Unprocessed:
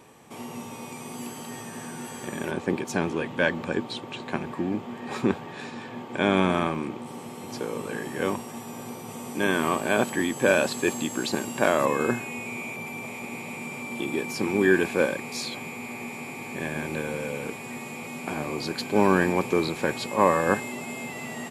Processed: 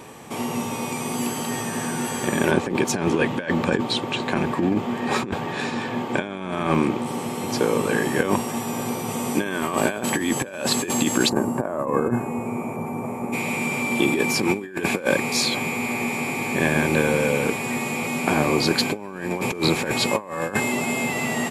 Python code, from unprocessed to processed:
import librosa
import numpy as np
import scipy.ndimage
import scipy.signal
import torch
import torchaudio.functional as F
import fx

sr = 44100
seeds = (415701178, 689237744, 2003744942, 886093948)

y = fx.curve_eq(x, sr, hz=(190.0, 1100.0, 3600.0, 9000.0), db=(0, -2, -27, -12), at=(11.28, 13.32), fade=0.02)
y = fx.over_compress(y, sr, threshold_db=-28.0, ratio=-0.5)
y = F.gain(torch.from_numpy(y), 7.5).numpy()